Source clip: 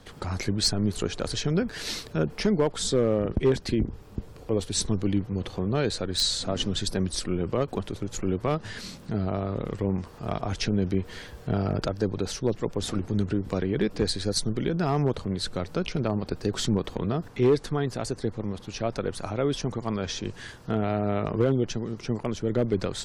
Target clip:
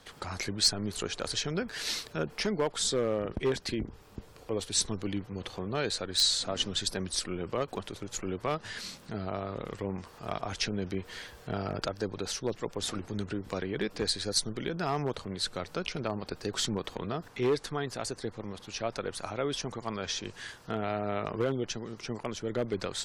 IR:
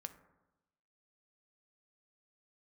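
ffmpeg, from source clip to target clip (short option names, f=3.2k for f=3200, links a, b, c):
-af "lowshelf=f=480:g=-11"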